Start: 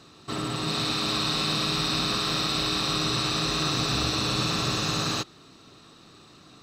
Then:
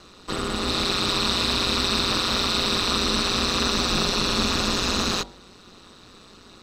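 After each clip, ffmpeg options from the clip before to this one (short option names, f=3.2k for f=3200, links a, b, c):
-af "aeval=exprs='val(0)*sin(2*PI*92*n/s)':c=same,bandreject=f=47.91:t=h:w=4,bandreject=f=95.82:t=h:w=4,bandreject=f=143.73:t=h:w=4,bandreject=f=191.64:t=h:w=4,bandreject=f=239.55:t=h:w=4,bandreject=f=287.46:t=h:w=4,bandreject=f=335.37:t=h:w=4,bandreject=f=383.28:t=h:w=4,bandreject=f=431.19:t=h:w=4,bandreject=f=479.1:t=h:w=4,bandreject=f=527.01:t=h:w=4,bandreject=f=574.92:t=h:w=4,bandreject=f=622.83:t=h:w=4,bandreject=f=670.74:t=h:w=4,bandreject=f=718.65:t=h:w=4,bandreject=f=766.56:t=h:w=4,bandreject=f=814.47:t=h:w=4,bandreject=f=862.38:t=h:w=4,bandreject=f=910.29:t=h:w=4,bandreject=f=958.2:t=h:w=4,volume=6.5dB"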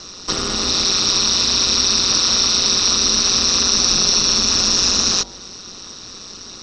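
-af "acompressor=threshold=-28dB:ratio=4,lowpass=f=5.6k:t=q:w=14,volume=6.5dB"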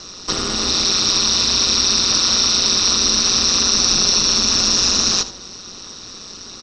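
-af "aecho=1:1:78:0.188"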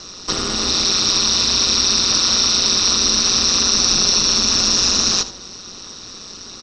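-af anull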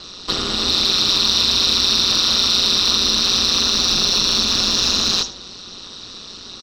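-filter_complex "[0:a]acrossover=split=4300[a][b];[a]aexciter=amount=2.5:drive=7:freq=3.2k[c];[b]asplit=2[d][e];[e]adelay=38,volume=-5dB[f];[d][f]amix=inputs=2:normalize=0[g];[c][g]amix=inputs=2:normalize=0,volume=-1dB"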